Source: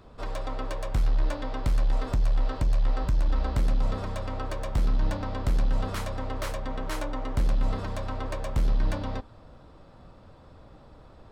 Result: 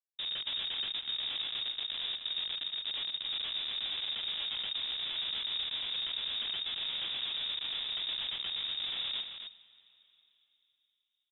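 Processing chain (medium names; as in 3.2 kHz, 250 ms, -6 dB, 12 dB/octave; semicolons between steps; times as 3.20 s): median filter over 25 samples; Chebyshev high-pass 160 Hz, order 4; treble shelf 2.7 kHz -4 dB; in parallel at +0.5 dB: compression 16:1, threshold -48 dBFS, peak gain reduction 18 dB; on the sum: Schmitt trigger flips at -33.5 dBFS; delay 266 ms -7.5 dB; plate-style reverb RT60 3.7 s, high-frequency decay 0.85×, DRR 18 dB; frequency inversion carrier 3.7 kHz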